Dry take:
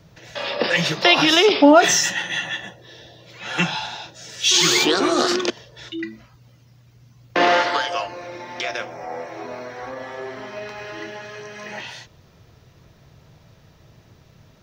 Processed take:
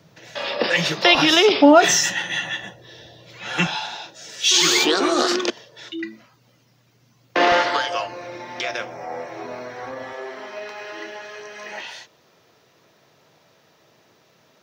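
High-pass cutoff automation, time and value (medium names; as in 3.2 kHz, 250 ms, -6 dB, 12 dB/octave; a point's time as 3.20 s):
150 Hz
from 1.15 s 54 Hz
from 3.67 s 220 Hz
from 7.52 s 80 Hz
from 10.13 s 330 Hz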